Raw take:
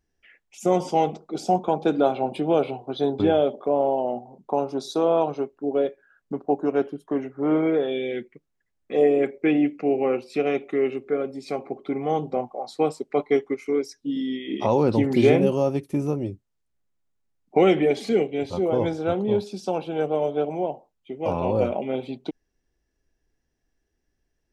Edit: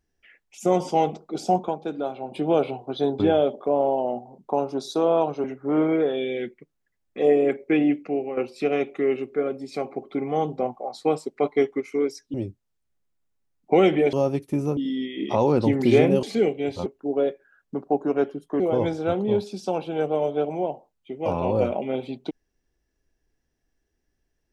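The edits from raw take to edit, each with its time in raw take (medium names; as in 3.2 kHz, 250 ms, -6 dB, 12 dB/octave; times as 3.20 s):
1.62–2.42 s: dip -8.5 dB, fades 0.14 s
5.44–7.18 s: move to 18.60 s
9.70–10.11 s: fade out, to -11.5 dB
14.08–15.54 s: swap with 16.18–17.97 s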